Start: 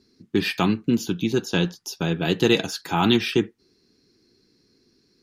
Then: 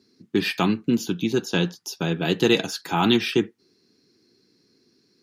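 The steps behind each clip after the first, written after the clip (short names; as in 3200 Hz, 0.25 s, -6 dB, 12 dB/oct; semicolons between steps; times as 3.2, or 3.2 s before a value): HPF 120 Hz 12 dB/oct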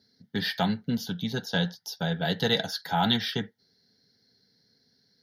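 fixed phaser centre 1700 Hz, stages 8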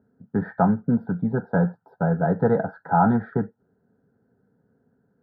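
elliptic low-pass 1400 Hz, stop band 50 dB; gain +8 dB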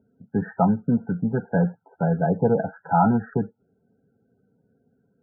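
loudest bins only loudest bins 32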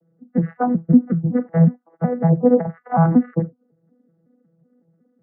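arpeggiated vocoder bare fifth, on E3, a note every 0.185 s; gain +5.5 dB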